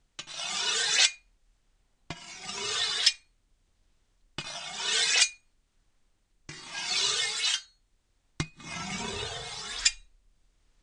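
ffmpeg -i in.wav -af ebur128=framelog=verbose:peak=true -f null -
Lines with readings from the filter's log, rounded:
Integrated loudness:
  I:         -27.3 LUFS
  Threshold: -38.6 LUFS
Loudness range:
  LRA:         4.1 LU
  Threshold: -49.8 LUFS
  LRA low:   -32.0 LUFS
  LRA high:  -27.9 LUFS
True peak:
  Peak:       -6.1 dBFS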